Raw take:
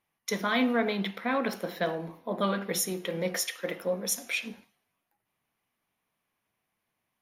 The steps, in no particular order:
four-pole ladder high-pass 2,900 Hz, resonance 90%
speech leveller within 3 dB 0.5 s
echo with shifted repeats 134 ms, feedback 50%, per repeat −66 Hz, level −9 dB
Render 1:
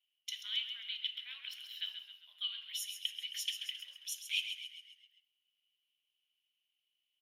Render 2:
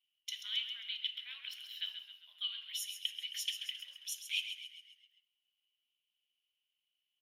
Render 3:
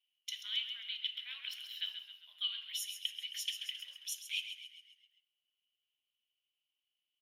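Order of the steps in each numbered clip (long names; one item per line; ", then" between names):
echo with shifted repeats, then speech leveller, then four-pole ladder high-pass
speech leveller, then echo with shifted repeats, then four-pole ladder high-pass
echo with shifted repeats, then four-pole ladder high-pass, then speech leveller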